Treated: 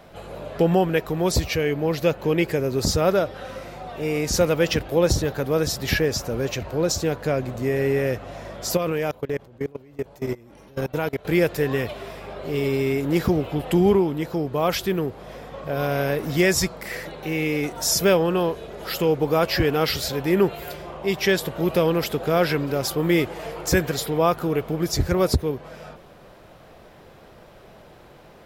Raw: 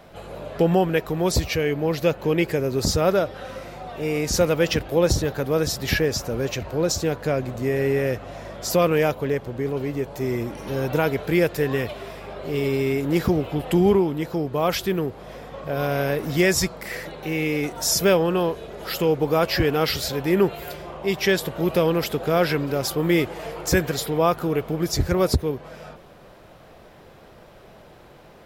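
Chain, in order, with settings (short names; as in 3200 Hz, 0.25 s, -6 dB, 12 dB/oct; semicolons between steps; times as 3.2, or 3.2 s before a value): 8.77–11.25 level quantiser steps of 24 dB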